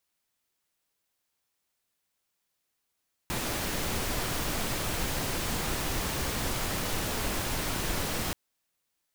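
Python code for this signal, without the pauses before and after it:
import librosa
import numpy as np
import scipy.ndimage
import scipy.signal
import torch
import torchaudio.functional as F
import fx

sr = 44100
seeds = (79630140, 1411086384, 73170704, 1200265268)

y = fx.noise_colour(sr, seeds[0], length_s=5.03, colour='pink', level_db=-31.0)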